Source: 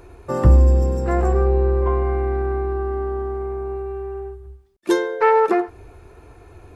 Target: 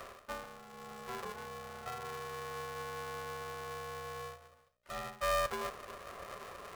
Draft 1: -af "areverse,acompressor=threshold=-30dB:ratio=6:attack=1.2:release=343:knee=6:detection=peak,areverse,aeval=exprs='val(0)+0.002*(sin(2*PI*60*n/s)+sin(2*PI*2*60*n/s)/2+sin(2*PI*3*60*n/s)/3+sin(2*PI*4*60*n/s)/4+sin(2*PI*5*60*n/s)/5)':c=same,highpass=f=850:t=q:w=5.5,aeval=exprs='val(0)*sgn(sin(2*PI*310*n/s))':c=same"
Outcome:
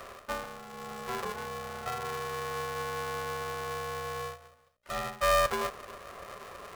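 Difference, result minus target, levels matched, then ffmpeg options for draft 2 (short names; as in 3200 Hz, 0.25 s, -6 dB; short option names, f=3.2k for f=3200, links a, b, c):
compressor: peak gain reduction -7 dB
-af "areverse,acompressor=threshold=-38.5dB:ratio=6:attack=1.2:release=343:knee=6:detection=peak,areverse,aeval=exprs='val(0)+0.002*(sin(2*PI*60*n/s)+sin(2*PI*2*60*n/s)/2+sin(2*PI*3*60*n/s)/3+sin(2*PI*4*60*n/s)/4+sin(2*PI*5*60*n/s)/5)':c=same,highpass=f=850:t=q:w=5.5,aeval=exprs='val(0)*sgn(sin(2*PI*310*n/s))':c=same"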